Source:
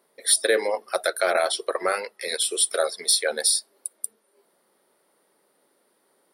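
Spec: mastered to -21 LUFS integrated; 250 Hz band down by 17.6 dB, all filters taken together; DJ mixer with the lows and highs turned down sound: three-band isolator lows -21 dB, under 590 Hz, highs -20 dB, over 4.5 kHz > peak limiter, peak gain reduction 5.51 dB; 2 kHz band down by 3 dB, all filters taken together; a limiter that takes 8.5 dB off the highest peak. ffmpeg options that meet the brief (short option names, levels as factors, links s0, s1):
-filter_complex "[0:a]equalizer=f=250:t=o:g=-6,equalizer=f=2000:t=o:g=-3.5,alimiter=limit=0.178:level=0:latency=1,acrossover=split=590 4500:gain=0.0891 1 0.1[s0][s1][s2];[s0][s1][s2]amix=inputs=3:normalize=0,volume=4.73,alimiter=limit=0.376:level=0:latency=1"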